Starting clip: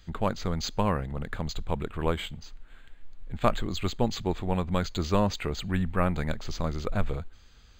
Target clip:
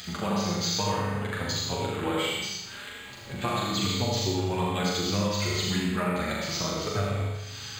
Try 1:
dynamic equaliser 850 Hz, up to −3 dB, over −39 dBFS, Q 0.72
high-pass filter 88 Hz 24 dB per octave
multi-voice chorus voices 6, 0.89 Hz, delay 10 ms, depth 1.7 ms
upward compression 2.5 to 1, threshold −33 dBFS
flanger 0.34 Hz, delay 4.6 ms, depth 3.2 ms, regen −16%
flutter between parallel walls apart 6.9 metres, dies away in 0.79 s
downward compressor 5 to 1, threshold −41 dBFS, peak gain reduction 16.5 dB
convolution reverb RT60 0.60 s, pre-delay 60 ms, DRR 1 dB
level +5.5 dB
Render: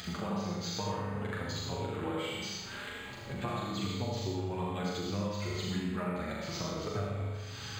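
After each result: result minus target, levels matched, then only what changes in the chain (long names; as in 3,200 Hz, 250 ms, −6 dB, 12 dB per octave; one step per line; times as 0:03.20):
downward compressor: peak gain reduction +7.5 dB; 4,000 Hz band −2.5 dB
change: downward compressor 5 to 1, threshold −31.5 dBFS, peak gain reduction 8.5 dB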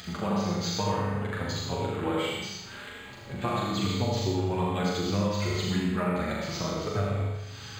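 4,000 Hz band −4.0 dB
add after high-pass filter: high-shelf EQ 2,200 Hz +9 dB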